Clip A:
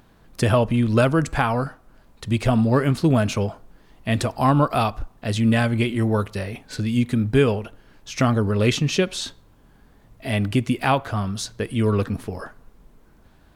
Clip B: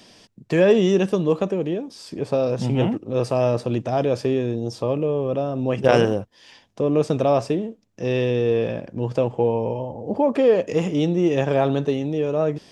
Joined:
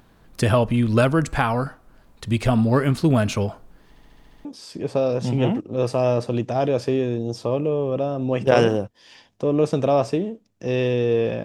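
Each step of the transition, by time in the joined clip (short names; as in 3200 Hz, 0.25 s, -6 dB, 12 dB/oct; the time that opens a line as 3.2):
clip A
3.89 stutter in place 0.07 s, 8 plays
4.45 switch to clip B from 1.82 s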